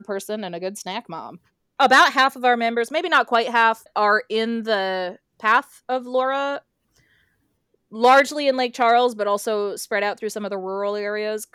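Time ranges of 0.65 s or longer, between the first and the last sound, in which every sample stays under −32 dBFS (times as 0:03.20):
0:06.58–0:07.93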